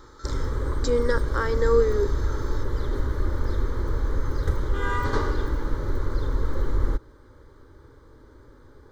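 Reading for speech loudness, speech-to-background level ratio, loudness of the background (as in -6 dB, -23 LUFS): -25.5 LUFS, 3.5 dB, -29.0 LUFS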